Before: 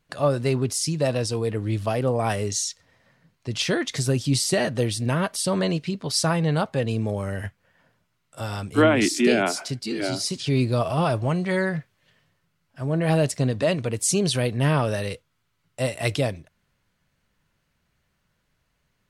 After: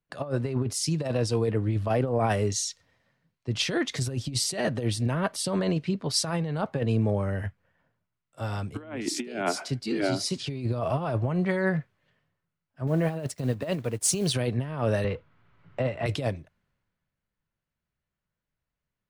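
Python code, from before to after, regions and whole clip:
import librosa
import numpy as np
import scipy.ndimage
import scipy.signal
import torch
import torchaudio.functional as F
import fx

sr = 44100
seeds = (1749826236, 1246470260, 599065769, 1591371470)

y = fx.chain(x, sr, fx.block_float(bits=5),
    fx.high_shelf(hz=8200.0, db=5.0),
    fx.upward_expand(threshold_db=-42.0, expansion=1.5), at=(12.87, 14.34))
y = fx.chain(y, sr, fx.law_mismatch(coded='mu'),
    fx.lowpass(hz=2700.0, slope=12),
    fx.band_squash(depth_pct=70), at=(15.04, 16.06))
y = fx.high_shelf(y, sr, hz=3800.0, db=-8.5)
y = fx.over_compress(y, sr, threshold_db=-24.0, ratio=-0.5)
y = fx.band_widen(y, sr, depth_pct=40)
y = y * librosa.db_to_amplitude(-1.5)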